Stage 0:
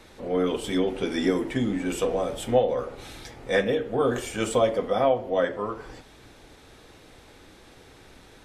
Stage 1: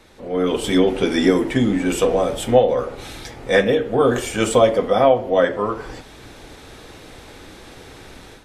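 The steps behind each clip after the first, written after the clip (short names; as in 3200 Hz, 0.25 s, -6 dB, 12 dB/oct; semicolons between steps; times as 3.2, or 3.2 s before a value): AGC gain up to 10 dB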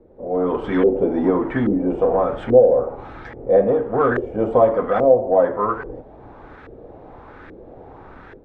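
in parallel at -10 dB: wavefolder -17 dBFS; on the sum: LFO low-pass saw up 1.2 Hz 430–1700 Hz; gain -4 dB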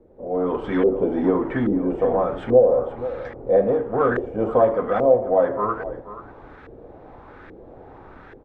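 echo 0.483 s -14.5 dB; gain -2.5 dB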